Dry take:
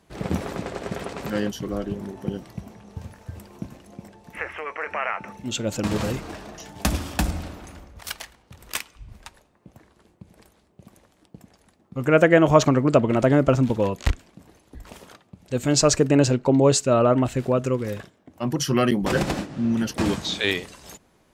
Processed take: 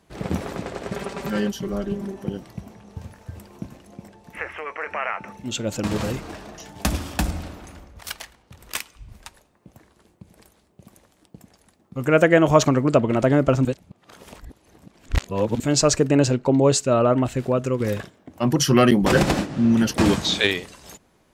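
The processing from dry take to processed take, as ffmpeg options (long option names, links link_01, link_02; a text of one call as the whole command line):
ffmpeg -i in.wav -filter_complex "[0:a]asettb=1/sr,asplit=3[link_01][link_02][link_03];[link_01]atrim=end=0.924[link_04];[link_02]atrim=start=0.92:end=2.24,asetpts=PTS-STARTPTS,afade=type=in:duration=0.004:curve=qsin,afade=type=out:start_time=1.316:duration=0.004:curve=qsin,aecho=1:1:5.1:0.62,atrim=end_sample=58212[link_05];[link_03]atrim=start=2.236[link_06];[link_04][link_05]acrossfade=duration=0.004:curve1=hsin:curve2=qsin[link_07];[link_07][link_06]acrossfade=duration=0.004:curve1=qsin:curve2=hsin,asettb=1/sr,asplit=3[link_08][link_09][link_10];[link_08]atrim=end=8.784[link_11];[link_09]atrim=start=8.78:end=12.93,asetpts=PTS-STARTPTS,afade=type=in:duration=0.004:curve=qsin,afade=type=out:start_time=4.146:duration=0.004:curve=qsin,highshelf=frequency=5900:gain=5.5[link_12];[link_10]atrim=start=12.926[link_13];[link_11][link_12]acrossfade=duration=0.004:curve1=hsin:curve2=qsin[link_14];[link_14][link_13]acrossfade=duration=0.004:curve1=qsin:curve2=hsin,asettb=1/sr,asplit=3[link_15][link_16][link_17];[link_15]atrim=end=17.804[link_18];[link_16]atrim=start=17.8:end=20.47,asetpts=PTS-STARTPTS,afade=type=in:duration=0.004:curve=qsin,afade=type=out:start_time=2.666:duration=0.004:curve=qsin,acontrast=33[link_19];[link_17]atrim=start=20.466[link_20];[link_18][link_19]acrossfade=duration=0.004:curve1=hsin:curve2=qsin[link_21];[link_21][link_20]acrossfade=duration=0.004:curve1=qsin:curve2=hsin,asplit=3[link_22][link_23][link_24];[link_22]atrim=end=13.652[link_25];[link_23]atrim=start=13.648:end=15.602,asetpts=PTS-STARTPTS,areverse[link_26];[link_24]atrim=start=15.598[link_27];[link_25][link_26]acrossfade=duration=0.004:curve1=hsin:curve2=hsin[link_28];[link_28][link_27]acrossfade=duration=0.004:curve1=hsin:curve2=hsin" out.wav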